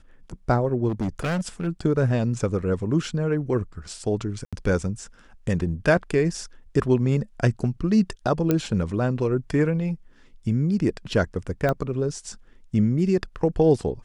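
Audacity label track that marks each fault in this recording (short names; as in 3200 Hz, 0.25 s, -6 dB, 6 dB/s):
0.880000	1.680000	clipped -22 dBFS
4.450000	4.530000	gap 76 ms
8.510000	8.510000	pop -8 dBFS
11.690000	11.690000	pop -12 dBFS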